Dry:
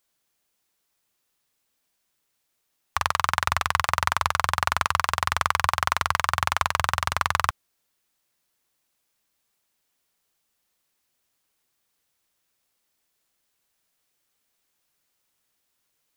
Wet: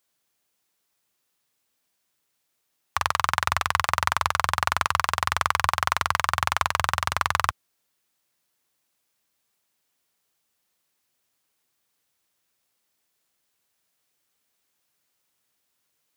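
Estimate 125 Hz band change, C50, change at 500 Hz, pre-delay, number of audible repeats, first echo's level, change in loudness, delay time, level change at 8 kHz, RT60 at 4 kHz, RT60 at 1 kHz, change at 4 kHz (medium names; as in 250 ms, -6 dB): -1.0 dB, no reverb, 0.0 dB, no reverb, no echo, no echo, 0.0 dB, no echo, 0.0 dB, no reverb, no reverb, 0.0 dB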